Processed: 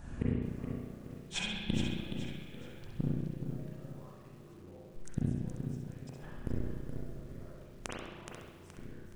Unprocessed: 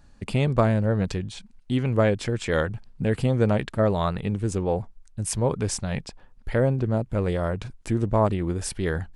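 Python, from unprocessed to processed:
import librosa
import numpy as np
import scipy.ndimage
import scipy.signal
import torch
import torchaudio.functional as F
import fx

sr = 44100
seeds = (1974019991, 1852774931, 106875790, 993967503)

p1 = fx.env_lowpass_down(x, sr, base_hz=1800.0, full_db=-17.5)
p2 = fx.low_shelf(p1, sr, hz=280.0, db=2.0)
p3 = fx.hpss(p2, sr, part='harmonic', gain_db=-9)
p4 = fx.peak_eq(p3, sr, hz=4400.0, db=-11.0, octaves=0.38)
p5 = fx.over_compress(p4, sr, threshold_db=-31.0, ratio=-0.5)
p6 = p4 + (p5 * librosa.db_to_amplitude(-1.0))
p7 = fx.gate_flip(p6, sr, shuts_db=-20.0, range_db=-39)
p8 = fx.dmg_buzz(p7, sr, base_hz=50.0, harmonics=8, level_db=-65.0, tilt_db=-1, odd_only=False)
p9 = p8 + fx.echo_feedback(p8, sr, ms=66, feedback_pct=35, wet_db=-6, dry=0)
p10 = fx.rev_spring(p9, sr, rt60_s=1.4, pass_ms=(33, 37, 45), chirp_ms=60, drr_db=-4.5)
p11 = fx.echo_crushed(p10, sr, ms=422, feedback_pct=35, bits=10, wet_db=-7)
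y = p11 * librosa.db_to_amplitude(1.0)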